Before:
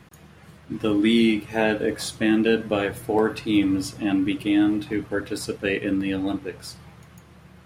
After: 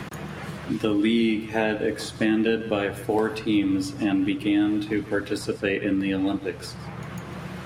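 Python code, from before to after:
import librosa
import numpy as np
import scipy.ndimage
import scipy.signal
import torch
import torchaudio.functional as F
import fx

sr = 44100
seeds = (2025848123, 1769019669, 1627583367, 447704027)

p1 = fx.high_shelf(x, sr, hz=9000.0, db=-6.0)
p2 = p1 + fx.echo_single(p1, sr, ms=150, db=-17.5, dry=0)
p3 = fx.band_squash(p2, sr, depth_pct=70)
y = p3 * 10.0 ** (-1.5 / 20.0)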